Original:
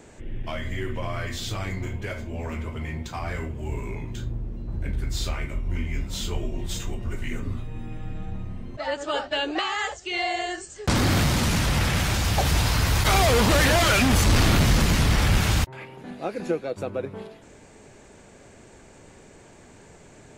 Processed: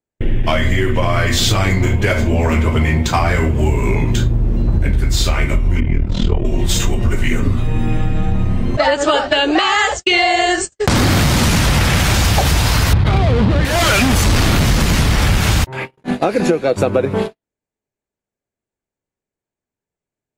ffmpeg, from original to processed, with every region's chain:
-filter_complex "[0:a]asettb=1/sr,asplit=3[a][b][c];[a]atrim=end=5.804[d];[b]atrim=start=5.8:end=6.45,asetpts=PTS-STARTPTS,afade=t=in:d=0.004:c=qsin,afade=t=out:st=0.646:d=0.004:c=qsin,lowpass=3.5k,tremolo=f=40:d=0.824,tiltshelf=f=1.1k:g=5.5[e];[c]atrim=start=6.446[f];[d][e]acrossfade=d=0.004:c1=hsin:c2=qsin[g];[g][f]acrossfade=d=0.004:c1=qsin:c2=hsin,asettb=1/sr,asplit=3[h][i][j];[h]atrim=end=12.934[k];[i]atrim=start=12.93:end=13.65,asetpts=PTS-STARTPTS,afade=t=in:d=0.004:c=qsin,afade=t=out:st=0.716:d=0.004:c=qsin,lowpass=f=4.3k:t=q:w=1.9,equalizer=f=130:w=0.38:g=13.5,adynamicsmooth=sensitivity=0.5:basefreq=1.7k[l];[j]atrim=start=13.646[m];[k][l]acrossfade=d=0.004:c1=hsin:c2=qsin[n];[n][m]acrossfade=d=0.004:c1=qsin:c2=hsin,agate=range=-60dB:threshold=-37dB:ratio=16:detection=peak,acompressor=threshold=-31dB:ratio=16,alimiter=level_in=22dB:limit=-1dB:release=50:level=0:latency=1,volume=-1dB"

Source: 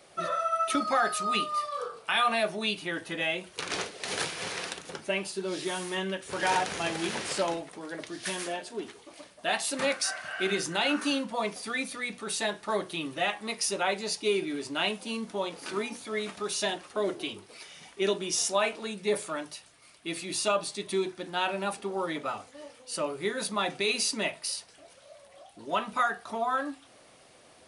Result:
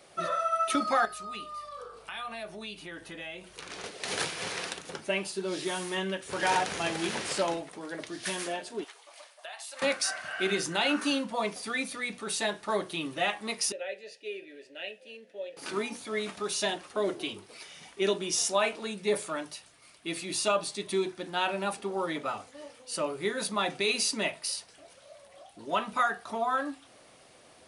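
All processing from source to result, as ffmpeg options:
-filter_complex "[0:a]asettb=1/sr,asplit=3[a][b][c];[a]atrim=end=1.054[d];[b]atrim=start=1.05:end=3.84,asetpts=PTS-STARTPTS,afade=t=in:d=0.004:c=qsin,afade=t=out:st=2.786:d=0.004:c=qsin,acompressor=threshold=-46dB:ratio=2:attack=3.2:release=140:knee=1:detection=peak,aeval=exprs='val(0)+0.000562*(sin(2*PI*50*n/s)+sin(2*PI*2*50*n/s)/2+sin(2*PI*3*50*n/s)/3+sin(2*PI*4*50*n/s)/4+sin(2*PI*5*50*n/s)/5)':c=same[e];[c]atrim=start=3.836[f];[d][e]acrossfade=d=0.004:c1=hsin:c2=qsin[g];[g][f]acrossfade=d=0.004:c1=qsin:c2=hsin,asettb=1/sr,asplit=3[h][i][j];[h]atrim=end=8.844[k];[i]atrim=start=8.84:end=9.82,asetpts=PTS-STARTPTS,afade=t=in:d=0.004:c=qsin,afade=t=out:st=0.976:d=0.004:c=qsin,highpass=f=610:w=0.5412,highpass=f=610:w=1.3066,acompressor=threshold=-39dB:ratio=8:attack=3.2:release=140:knee=1:detection=peak[l];[j]atrim=start=9.816[m];[k][l]acrossfade=d=0.004:c1=hsin:c2=qsin[n];[n][m]acrossfade=d=0.004:c1=qsin:c2=hsin,asettb=1/sr,asplit=3[o][p][q];[o]atrim=end=13.724[r];[p]atrim=start=13.72:end=15.57,asetpts=PTS-STARTPTS,afade=t=in:d=0.004:c=qsin,afade=t=out:st=1.846:d=0.004:c=qsin,asplit=3[s][t][u];[s]bandpass=f=530:t=q:w=8,volume=0dB[v];[t]bandpass=f=1.84k:t=q:w=8,volume=-6dB[w];[u]bandpass=f=2.48k:t=q:w=8,volume=-9dB[x];[v][w][x]amix=inputs=3:normalize=0,highshelf=f=4.6k:g=9[y];[q]atrim=start=15.566[z];[r][y]acrossfade=d=0.004:c1=hsin:c2=qsin[aa];[aa][z]acrossfade=d=0.004:c1=qsin:c2=hsin"

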